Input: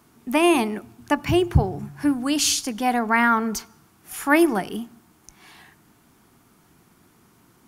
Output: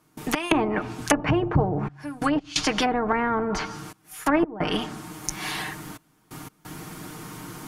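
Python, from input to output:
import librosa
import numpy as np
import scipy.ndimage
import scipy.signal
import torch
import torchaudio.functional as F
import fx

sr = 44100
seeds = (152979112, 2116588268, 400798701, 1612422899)

y = fx.step_gate(x, sr, bpm=88, pattern='.x.xxxxxxxx.', floor_db=-24.0, edge_ms=4.5)
y = y + 0.61 * np.pad(y, (int(6.5 * sr / 1000.0), 0))[:len(y)]
y = fx.env_lowpass_down(y, sr, base_hz=540.0, full_db=-18.0)
y = fx.spectral_comp(y, sr, ratio=2.0)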